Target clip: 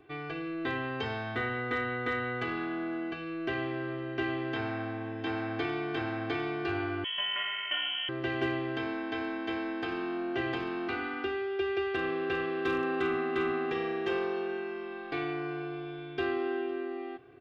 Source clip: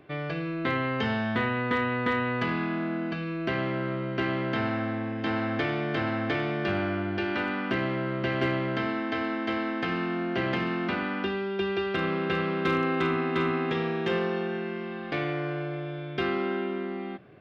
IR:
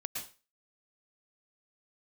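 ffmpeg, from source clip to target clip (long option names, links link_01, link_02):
-filter_complex "[0:a]aecho=1:1:2.6:0.99,asplit=2[link_01][link_02];[link_02]aecho=0:1:509:0.0668[link_03];[link_01][link_03]amix=inputs=2:normalize=0,asettb=1/sr,asplit=3[link_04][link_05][link_06];[link_04]atrim=end=7.044[link_07];[link_05]atrim=start=7.04:end=8.09,asetpts=PTS-STARTPTS,afade=type=in:duration=0.004:curve=qsin,afade=type=out:start_time=1.046:duration=0.004:curve=qsin,lowpass=frequency=2900:width_type=q:width=0.5098,lowpass=frequency=2900:width_type=q:width=0.6013,lowpass=frequency=2900:width_type=q:width=0.9,lowpass=frequency=2900:width_type=q:width=2.563,afreqshift=-3400[link_08];[link_06]atrim=start=8.086[link_09];[link_07][link_08]acrossfade=duration=0.004:curve1=hsin:curve2=qsin[link_10];[link_10][link_09]acrossfade=duration=0.004:curve1=qsin:curve2=hsin,volume=-7.5dB"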